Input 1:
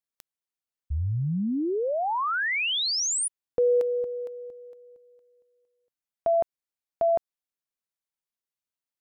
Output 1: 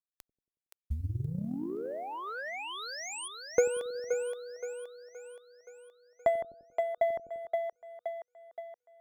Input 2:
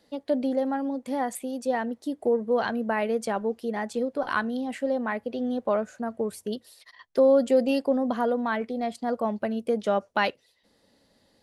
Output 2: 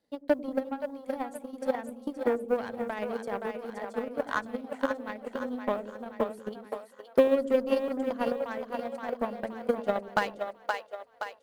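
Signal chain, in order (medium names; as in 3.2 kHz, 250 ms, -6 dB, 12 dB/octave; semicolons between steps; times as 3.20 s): block-companded coder 7-bit; peaking EQ 4.9 kHz -3.5 dB 2.1 oct; Chebyshev shaper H 7 -23 dB, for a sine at -11 dBFS; two-band feedback delay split 460 Hz, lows 92 ms, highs 522 ms, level -4 dB; transient shaper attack +11 dB, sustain -1 dB; trim -8.5 dB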